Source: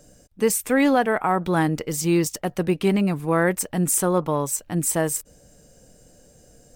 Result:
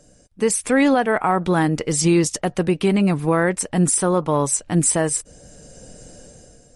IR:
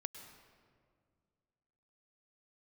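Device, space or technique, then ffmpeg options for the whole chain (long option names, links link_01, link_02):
low-bitrate web radio: -af "dynaudnorm=framelen=120:gausssize=9:maxgain=11dB,alimiter=limit=-7.5dB:level=0:latency=1:release=411" -ar 48000 -c:a libmp3lame -b:a 48k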